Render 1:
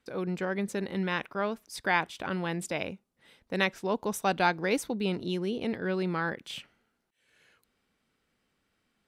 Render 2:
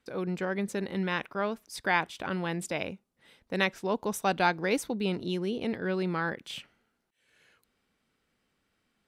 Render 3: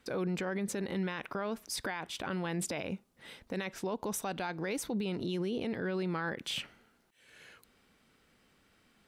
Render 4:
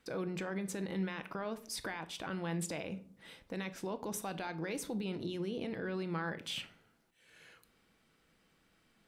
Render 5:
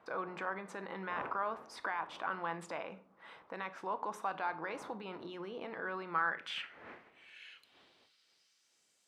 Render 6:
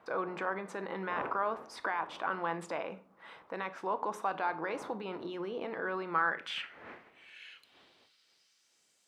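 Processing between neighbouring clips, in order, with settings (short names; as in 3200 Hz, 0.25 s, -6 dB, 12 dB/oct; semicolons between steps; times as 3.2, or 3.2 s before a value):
nothing audible
compressor 6:1, threshold -34 dBFS, peak gain reduction 13.5 dB; limiter -35 dBFS, peak gain reduction 11.5 dB; gain +8.5 dB
shoebox room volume 500 m³, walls furnished, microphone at 0.67 m; gain -4 dB
wind noise 400 Hz -53 dBFS; band-pass sweep 1100 Hz -> 7000 Hz, 6.02–8.87; gain +10.5 dB
dynamic EQ 400 Hz, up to +4 dB, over -49 dBFS, Q 0.86; gain +2.5 dB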